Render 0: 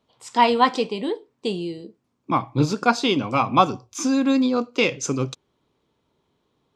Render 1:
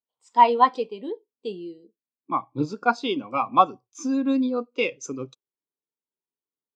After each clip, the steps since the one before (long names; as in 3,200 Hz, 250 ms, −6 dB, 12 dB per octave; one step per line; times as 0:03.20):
high-pass filter 320 Hz 6 dB per octave
every bin expanded away from the loudest bin 1.5 to 1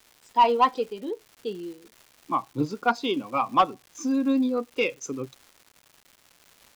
soft clipping −11 dBFS, distortion −13 dB
surface crackle 420 per second −41 dBFS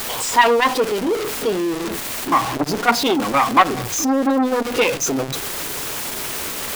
converter with a step at zero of −25.5 dBFS
mains-hum notches 50/100/150/200/250/300 Hz
saturating transformer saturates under 1,200 Hz
level +8.5 dB